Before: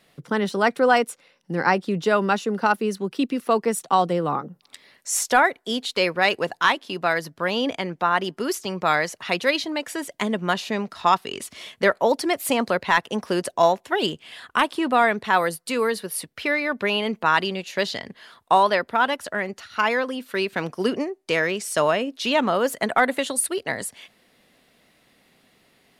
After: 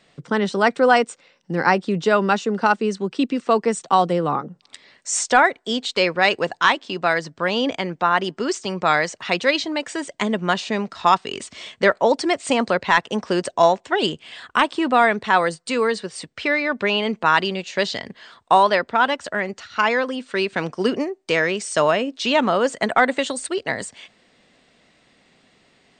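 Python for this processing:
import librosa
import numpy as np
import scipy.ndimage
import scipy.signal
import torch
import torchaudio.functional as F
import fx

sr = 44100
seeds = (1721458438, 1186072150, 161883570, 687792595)

y = fx.brickwall_lowpass(x, sr, high_hz=8900.0)
y = F.gain(torch.from_numpy(y), 2.5).numpy()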